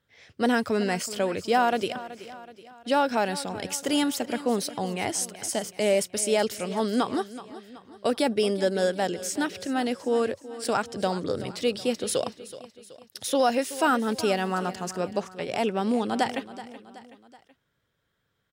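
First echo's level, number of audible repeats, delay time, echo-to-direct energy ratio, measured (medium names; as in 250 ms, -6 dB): -15.5 dB, 3, 376 ms, -14.5 dB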